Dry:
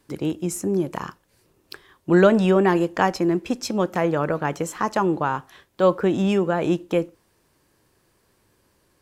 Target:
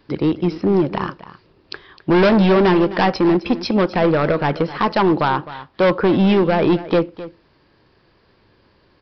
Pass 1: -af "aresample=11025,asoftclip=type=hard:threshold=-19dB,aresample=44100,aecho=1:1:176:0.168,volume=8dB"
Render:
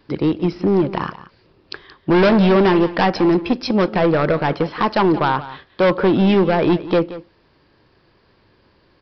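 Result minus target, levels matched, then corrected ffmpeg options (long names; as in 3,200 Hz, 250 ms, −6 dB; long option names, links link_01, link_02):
echo 83 ms early
-af "aresample=11025,asoftclip=type=hard:threshold=-19dB,aresample=44100,aecho=1:1:259:0.168,volume=8dB"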